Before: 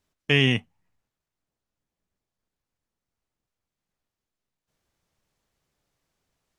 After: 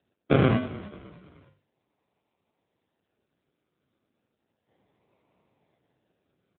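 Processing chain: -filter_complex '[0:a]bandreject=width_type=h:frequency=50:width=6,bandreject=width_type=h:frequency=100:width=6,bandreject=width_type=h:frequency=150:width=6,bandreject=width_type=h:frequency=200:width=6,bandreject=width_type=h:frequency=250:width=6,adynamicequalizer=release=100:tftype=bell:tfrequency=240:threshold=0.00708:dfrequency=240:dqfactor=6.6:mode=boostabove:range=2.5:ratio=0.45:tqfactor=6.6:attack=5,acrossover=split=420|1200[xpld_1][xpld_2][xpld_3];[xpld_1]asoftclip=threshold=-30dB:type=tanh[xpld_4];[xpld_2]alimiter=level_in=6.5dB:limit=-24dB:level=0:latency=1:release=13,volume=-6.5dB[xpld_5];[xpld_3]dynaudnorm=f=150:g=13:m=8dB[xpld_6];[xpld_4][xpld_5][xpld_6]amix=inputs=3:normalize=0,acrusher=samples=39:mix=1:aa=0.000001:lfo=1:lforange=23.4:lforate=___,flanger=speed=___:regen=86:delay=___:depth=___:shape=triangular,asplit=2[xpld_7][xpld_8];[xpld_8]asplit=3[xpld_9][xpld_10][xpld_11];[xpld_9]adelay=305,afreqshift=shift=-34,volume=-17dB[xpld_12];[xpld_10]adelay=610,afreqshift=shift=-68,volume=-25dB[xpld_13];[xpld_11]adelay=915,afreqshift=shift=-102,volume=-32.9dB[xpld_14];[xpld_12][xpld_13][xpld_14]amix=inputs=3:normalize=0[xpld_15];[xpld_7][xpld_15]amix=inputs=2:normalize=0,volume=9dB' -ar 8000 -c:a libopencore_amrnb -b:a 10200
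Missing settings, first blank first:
0.33, 1.9, 1.7, 8.6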